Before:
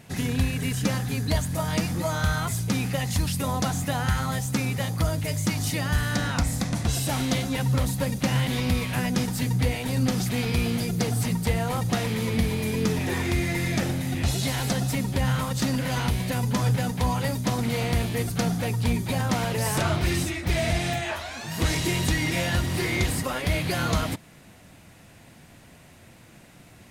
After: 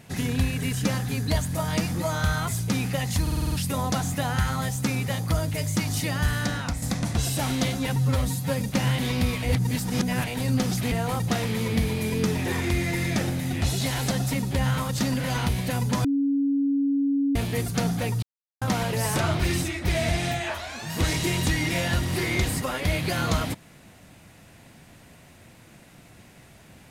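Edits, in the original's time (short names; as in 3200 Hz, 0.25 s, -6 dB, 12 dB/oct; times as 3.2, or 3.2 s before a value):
3.22 stutter 0.05 s, 7 plays
6.07–6.52 fade out, to -7 dB
7.66–8.09 stretch 1.5×
8.91–9.75 reverse
10.4–11.53 cut
16.66–17.97 bleep 279 Hz -20 dBFS
18.84–19.23 mute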